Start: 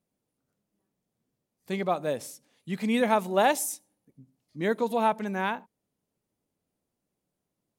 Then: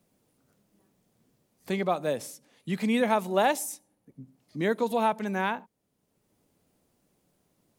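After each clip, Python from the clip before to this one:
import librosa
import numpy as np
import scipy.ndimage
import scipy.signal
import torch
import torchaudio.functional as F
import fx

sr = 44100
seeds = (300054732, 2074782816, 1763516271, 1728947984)

y = fx.band_squash(x, sr, depth_pct=40)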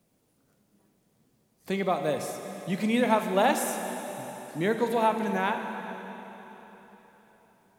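y = fx.rev_plate(x, sr, seeds[0], rt60_s=4.1, hf_ratio=0.95, predelay_ms=0, drr_db=5.0)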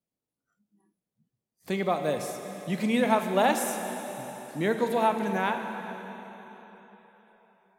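y = fx.noise_reduce_blind(x, sr, reduce_db=21)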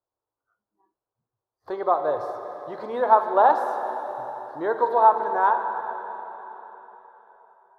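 y = fx.curve_eq(x, sr, hz=(110.0, 190.0, 350.0, 670.0, 980.0, 1600.0, 2400.0, 4300.0, 7600.0, 14000.0), db=(0, -23, 1, 5, 12, 2, -23, -7, -27, -24))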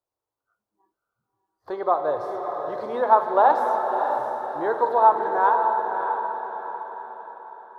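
y = fx.echo_diffused(x, sr, ms=603, feedback_pct=43, wet_db=-6.5)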